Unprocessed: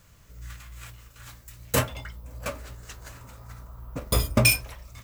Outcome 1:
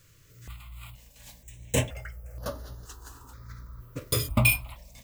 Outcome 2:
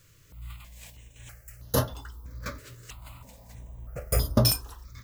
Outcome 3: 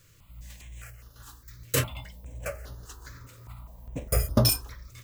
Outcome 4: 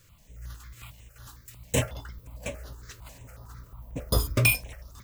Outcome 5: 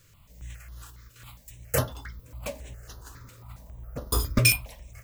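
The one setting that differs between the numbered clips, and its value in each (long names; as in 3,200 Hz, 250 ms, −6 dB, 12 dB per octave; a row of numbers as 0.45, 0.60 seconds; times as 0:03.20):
step-sequenced phaser, speed: 2.1, 3.1, 4.9, 11, 7.3 Hertz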